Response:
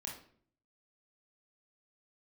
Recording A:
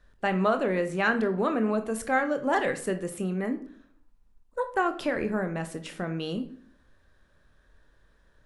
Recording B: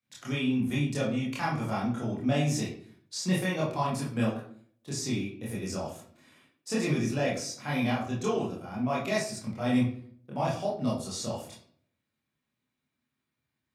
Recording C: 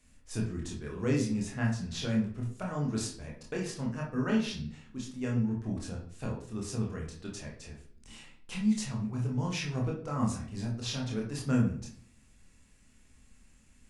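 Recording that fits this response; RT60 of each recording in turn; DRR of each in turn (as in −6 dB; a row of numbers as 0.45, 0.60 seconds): C; 0.55, 0.55, 0.55 seconds; 7.5, −6.5, −2.0 decibels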